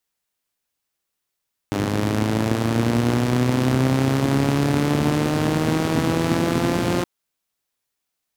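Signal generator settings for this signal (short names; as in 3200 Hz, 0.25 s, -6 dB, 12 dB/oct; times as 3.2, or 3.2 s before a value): four-cylinder engine model, changing speed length 5.32 s, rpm 3000, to 5300, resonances 130/240 Hz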